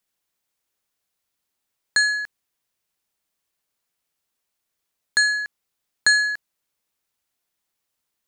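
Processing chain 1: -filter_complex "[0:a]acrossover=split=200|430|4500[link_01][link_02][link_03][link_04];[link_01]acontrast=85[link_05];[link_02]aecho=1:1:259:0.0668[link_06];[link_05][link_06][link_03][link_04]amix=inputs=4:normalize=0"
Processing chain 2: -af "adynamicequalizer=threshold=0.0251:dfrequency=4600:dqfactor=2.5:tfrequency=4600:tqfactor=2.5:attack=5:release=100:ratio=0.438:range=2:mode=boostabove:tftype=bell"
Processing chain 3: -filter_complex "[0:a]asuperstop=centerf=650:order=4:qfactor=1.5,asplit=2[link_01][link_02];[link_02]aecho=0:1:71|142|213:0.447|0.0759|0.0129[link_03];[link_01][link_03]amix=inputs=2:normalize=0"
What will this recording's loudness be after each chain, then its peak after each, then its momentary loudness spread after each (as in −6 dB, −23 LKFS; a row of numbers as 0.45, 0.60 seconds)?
−20.5, −20.0, −18.5 LKFS; −5.0, −5.5, −5.5 dBFS; 15, 16, 12 LU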